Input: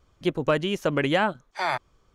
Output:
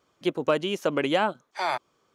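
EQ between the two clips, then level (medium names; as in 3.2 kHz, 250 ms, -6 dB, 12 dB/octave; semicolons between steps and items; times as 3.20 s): high-pass 230 Hz 12 dB/octave; dynamic bell 1.8 kHz, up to -6 dB, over -42 dBFS, Q 3; 0.0 dB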